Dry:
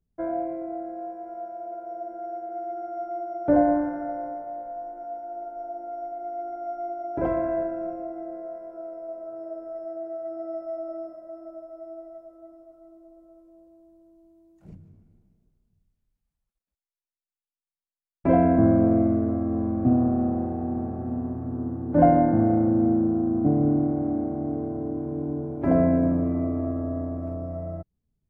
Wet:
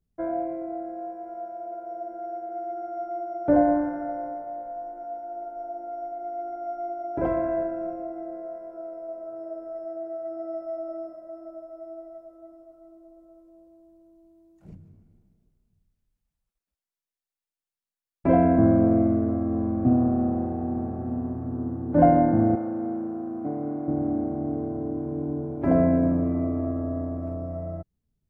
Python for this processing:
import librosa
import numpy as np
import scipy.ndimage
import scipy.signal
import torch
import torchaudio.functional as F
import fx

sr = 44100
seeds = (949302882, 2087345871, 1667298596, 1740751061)

y = fx.highpass(x, sr, hz=750.0, slope=6, at=(22.55, 23.88))